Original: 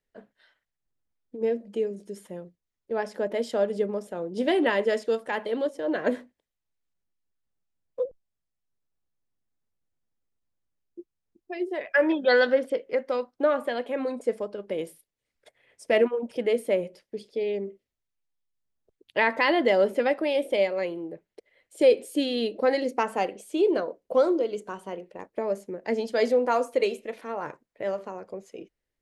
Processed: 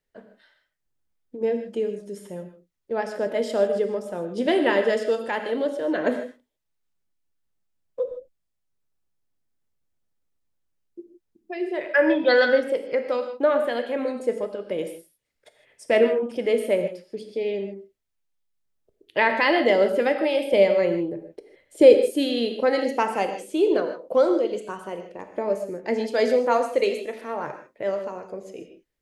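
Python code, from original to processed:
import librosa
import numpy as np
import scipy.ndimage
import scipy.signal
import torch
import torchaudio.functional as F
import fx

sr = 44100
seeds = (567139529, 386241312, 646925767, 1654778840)

y = fx.low_shelf(x, sr, hz=470.0, db=9.0, at=(20.53, 21.98))
y = fx.rev_gated(y, sr, seeds[0], gate_ms=180, shape='flat', drr_db=6.5)
y = F.gain(torch.from_numpy(y), 2.0).numpy()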